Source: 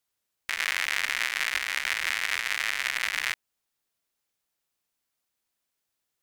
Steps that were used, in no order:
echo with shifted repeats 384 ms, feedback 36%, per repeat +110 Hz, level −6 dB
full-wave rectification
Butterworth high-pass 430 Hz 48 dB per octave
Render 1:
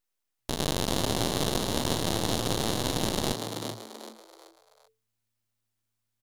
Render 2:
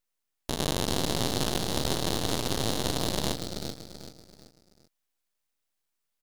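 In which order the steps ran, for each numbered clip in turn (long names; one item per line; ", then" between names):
Butterworth high-pass, then full-wave rectification, then echo with shifted repeats
Butterworth high-pass, then echo with shifted repeats, then full-wave rectification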